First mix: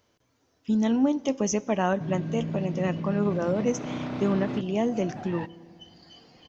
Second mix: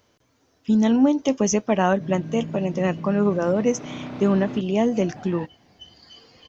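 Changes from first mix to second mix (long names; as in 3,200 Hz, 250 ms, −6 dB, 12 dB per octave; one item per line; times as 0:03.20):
speech +7.5 dB
reverb: off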